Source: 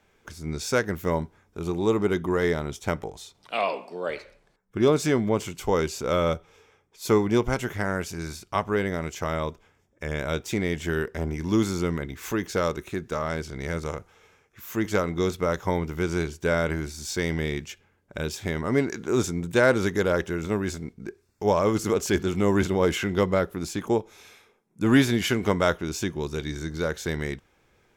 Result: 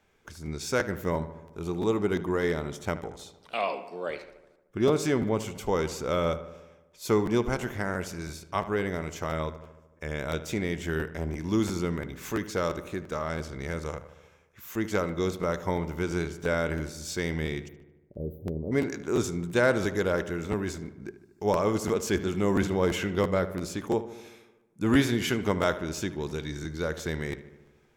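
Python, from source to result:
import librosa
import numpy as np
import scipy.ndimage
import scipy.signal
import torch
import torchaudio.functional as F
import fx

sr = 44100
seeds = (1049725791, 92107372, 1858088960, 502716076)

y = fx.cheby2_bandstop(x, sr, low_hz=1300.0, high_hz=8800.0, order=4, stop_db=50, at=(17.67, 18.71), fade=0.02)
y = fx.echo_filtered(y, sr, ms=75, feedback_pct=65, hz=2900.0, wet_db=-13.5)
y = fx.buffer_crackle(y, sr, first_s=0.45, period_s=0.34, block=512, kind='repeat')
y = F.gain(torch.from_numpy(y), -3.5).numpy()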